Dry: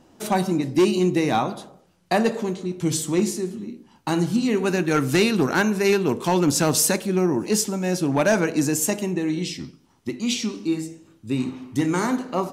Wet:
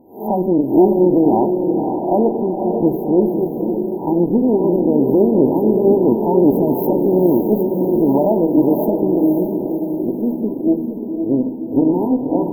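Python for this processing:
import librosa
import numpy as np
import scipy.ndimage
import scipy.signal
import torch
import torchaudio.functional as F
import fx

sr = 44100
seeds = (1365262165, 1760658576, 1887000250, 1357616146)

y = fx.spec_swells(x, sr, rise_s=0.38)
y = fx.peak_eq(y, sr, hz=97.0, db=14.0, octaves=2.5)
y = fx.tube_stage(y, sr, drive_db=10.0, bias=0.8)
y = fx.brickwall_bandstop(y, sr, low_hz=1000.0, high_hz=13000.0)
y = fx.low_shelf_res(y, sr, hz=200.0, db=-12.0, q=1.5)
y = fx.echo_diffused(y, sr, ms=543, feedback_pct=50, wet_db=-5)
y = F.gain(torch.from_numpy(y), 4.5).numpy()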